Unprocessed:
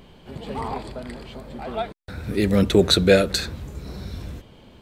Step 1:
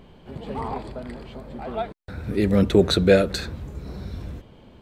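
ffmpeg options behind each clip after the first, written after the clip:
-af "highshelf=f=2500:g=-8"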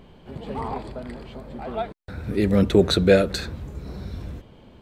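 -af anull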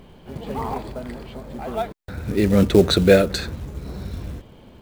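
-af "acrusher=bits=6:mode=log:mix=0:aa=0.000001,volume=1.33"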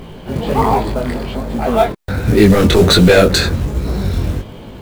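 -af "apsyclip=7.94,flanger=delay=17.5:depth=6.2:speed=1.3,volume=0.841"

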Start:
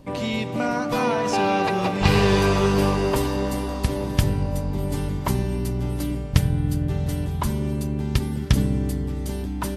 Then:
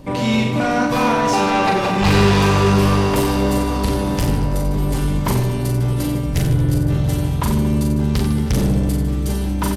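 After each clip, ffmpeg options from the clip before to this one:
-af "asoftclip=type=tanh:threshold=0.0944,aecho=1:1:40|90|152.5|230.6|328.3:0.631|0.398|0.251|0.158|0.1,volume=2.24"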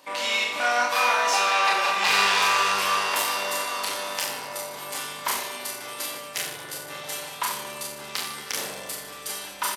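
-filter_complex "[0:a]highpass=1100,asplit=2[s0][s1];[s1]adelay=29,volume=0.668[s2];[s0][s2]amix=inputs=2:normalize=0"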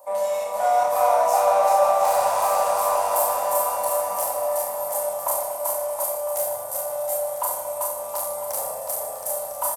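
-filter_complex "[0:a]firequalizer=gain_entry='entry(100,0);entry(160,-16);entry(250,-16);entry(380,-18);entry(570,13);entry(1600,-16);entry(3000,-23);entry(8300,2);entry(13000,7)':delay=0.05:min_phase=1,asplit=2[s0][s1];[s1]volume=22.4,asoftclip=hard,volume=0.0447,volume=0.355[s2];[s0][s2]amix=inputs=2:normalize=0,aecho=1:1:390|721.5|1003|1243|1446:0.631|0.398|0.251|0.158|0.1,volume=0.841"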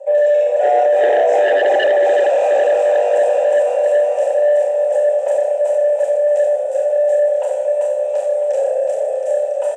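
-filter_complex "[0:a]asplit=3[s0][s1][s2];[s0]bandpass=f=530:t=q:w=8,volume=1[s3];[s1]bandpass=f=1840:t=q:w=8,volume=0.501[s4];[s2]bandpass=f=2480:t=q:w=8,volume=0.355[s5];[s3][s4][s5]amix=inputs=3:normalize=0,aeval=exprs='0.158*sin(PI/2*3.55*val(0)/0.158)':c=same,highpass=f=300:w=0.5412,highpass=f=300:w=1.3066,equalizer=f=440:t=q:w=4:g=5,equalizer=f=750:t=q:w=4:g=4,equalizer=f=1100:t=q:w=4:g=-8,equalizer=f=2000:t=q:w=4:g=-7,equalizer=f=4600:t=q:w=4:g=-10,equalizer=f=7600:t=q:w=4:g=8,lowpass=f=7700:w=0.5412,lowpass=f=7700:w=1.3066,volume=1.78"

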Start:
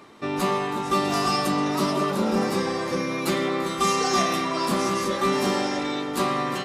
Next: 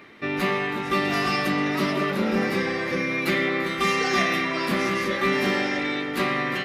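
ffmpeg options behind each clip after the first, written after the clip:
-af "equalizer=f=1000:t=o:w=1:g=-7,equalizer=f=2000:t=o:w=1:g=11,equalizer=f=8000:t=o:w=1:g=-11"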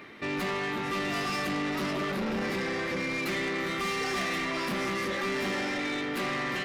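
-filter_complex "[0:a]asplit=2[s0][s1];[s1]alimiter=limit=0.0841:level=0:latency=1,volume=0.891[s2];[s0][s2]amix=inputs=2:normalize=0,asoftclip=type=tanh:threshold=0.075,volume=0.562"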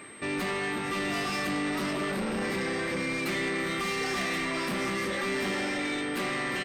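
-filter_complex "[0:a]aeval=exprs='val(0)+0.00282*sin(2*PI*8300*n/s)':c=same,asplit=2[s0][s1];[s1]adelay=30,volume=0.224[s2];[s0][s2]amix=inputs=2:normalize=0"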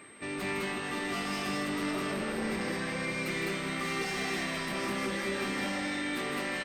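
-af "aecho=1:1:157.4|207:0.447|0.891,volume=0.531"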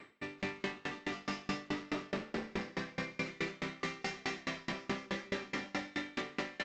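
-af "aresample=16000,aresample=44100,aeval=exprs='val(0)*pow(10,-29*if(lt(mod(4.7*n/s,1),2*abs(4.7)/1000),1-mod(4.7*n/s,1)/(2*abs(4.7)/1000),(mod(4.7*n/s,1)-2*abs(4.7)/1000)/(1-2*abs(4.7)/1000))/20)':c=same,volume=1.19"

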